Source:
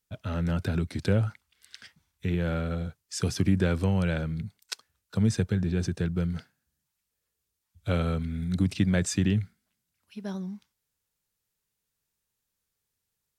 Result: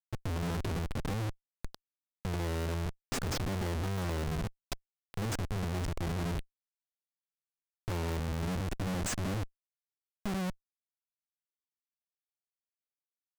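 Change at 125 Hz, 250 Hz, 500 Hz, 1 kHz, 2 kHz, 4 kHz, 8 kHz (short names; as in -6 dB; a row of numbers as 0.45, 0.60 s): -7.5, -9.5, -6.0, +1.0, -4.5, -3.0, -3.5 dB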